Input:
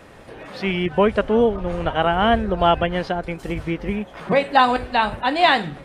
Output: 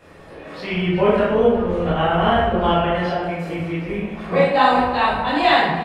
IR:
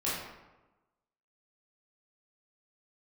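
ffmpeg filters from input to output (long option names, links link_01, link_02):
-filter_complex "[0:a]asettb=1/sr,asplit=3[link_01][link_02][link_03];[link_01]atrim=end=2.664[link_04];[link_02]atrim=start=2.66:end=3.9,asetpts=PTS-STARTPTS,afade=type=in:duration=0.004:curve=qsin,afade=type=out:start_time=1.236:duration=0.004:curve=qsin,highpass=frequency=180:poles=1[link_05];[link_03]atrim=start=3.896[link_06];[link_04][link_05]acrossfade=duration=0.004:curve1=hsin:curve2=qsin[link_07];[link_07][link_06]acrossfade=duration=0.004:curve1=qsin:curve2=hsin,aecho=1:1:367:0.178[link_08];[1:a]atrim=start_sample=2205[link_09];[link_08][link_09]afir=irnorm=-1:irlink=0,volume=-6dB"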